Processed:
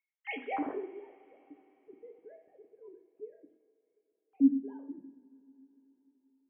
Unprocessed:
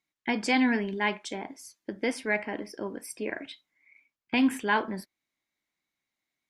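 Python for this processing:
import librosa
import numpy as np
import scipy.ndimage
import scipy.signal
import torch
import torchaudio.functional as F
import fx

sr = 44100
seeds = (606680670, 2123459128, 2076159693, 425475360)

y = fx.sine_speech(x, sr)
y = fx.filter_sweep_lowpass(y, sr, from_hz=2900.0, to_hz=230.0, start_s=0.35, end_s=0.89, q=1.6)
y = fx.rev_double_slope(y, sr, seeds[0], early_s=0.56, late_s=4.2, knee_db=-21, drr_db=4.0)
y = y * librosa.db_to_amplitude(-9.0)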